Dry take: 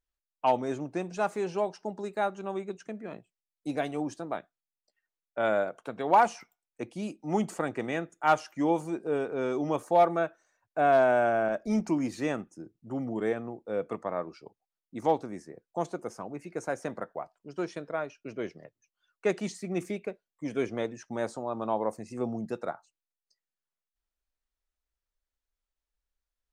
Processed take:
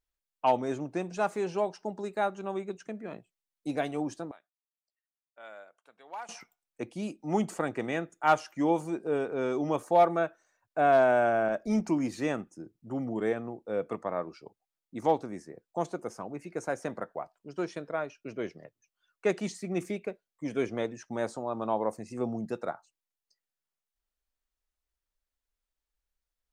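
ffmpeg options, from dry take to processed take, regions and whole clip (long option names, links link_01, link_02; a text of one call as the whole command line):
ffmpeg -i in.wav -filter_complex "[0:a]asettb=1/sr,asplit=3[link_01][link_02][link_03];[link_01]atrim=end=4.314[link_04];[link_02]atrim=start=4.31:end=6.29,asetpts=PTS-STARTPTS,afade=type=in:duration=0.004:curve=qsin,afade=type=out:start_time=1.976:duration=0.004:curve=qsin,lowpass=frequency=1400:poles=1,aderivative[link_05];[link_03]atrim=start=6.286[link_06];[link_04][link_05]acrossfade=duration=0.004:curve1=hsin:curve2=qsin[link_07];[link_07][link_06]acrossfade=duration=0.004:curve1=qsin:curve2=hsin" out.wav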